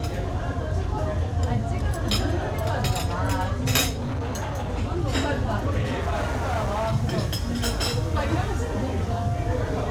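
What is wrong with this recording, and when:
3.89–4.73 clipped -25 dBFS
5.82–6.94 clipped -21.5 dBFS

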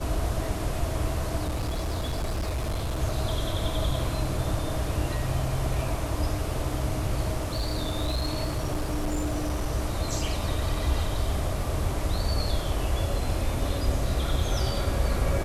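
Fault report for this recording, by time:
1.46–3.01 clipped -25 dBFS
7.36–9.67 clipped -23 dBFS

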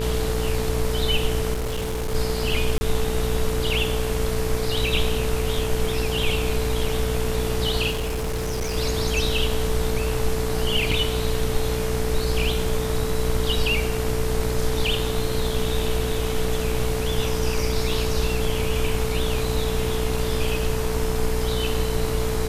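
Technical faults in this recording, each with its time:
buzz 60 Hz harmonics 40 -27 dBFS
tone 440 Hz -27 dBFS
1.53–2.15 clipped -23 dBFS
2.78–2.81 gap 30 ms
7.9–8.77 clipped -22.5 dBFS
10.91 gap 4.1 ms

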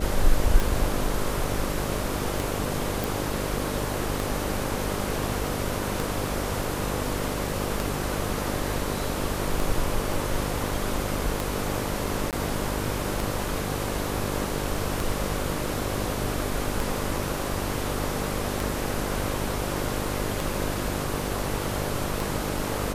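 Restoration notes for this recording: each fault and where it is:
buzz 50 Hz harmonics 12 -32 dBFS
tick 33 1/3 rpm
3.04 pop
12.31–12.33 gap 18 ms

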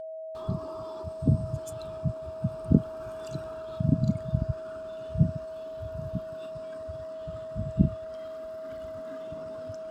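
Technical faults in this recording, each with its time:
tone 640 Hz -36 dBFS

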